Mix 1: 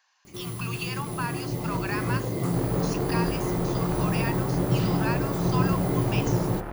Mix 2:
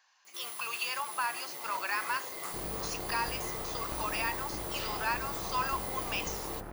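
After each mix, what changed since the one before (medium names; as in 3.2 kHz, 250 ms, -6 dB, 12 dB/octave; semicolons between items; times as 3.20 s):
first sound: add high-pass 1.1 kHz 12 dB/octave; second sound -8.5 dB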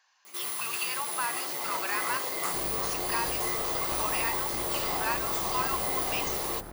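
first sound +8.5 dB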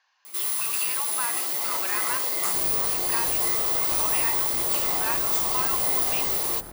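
speech: add distance through air 180 m; master: add treble shelf 4 kHz +8.5 dB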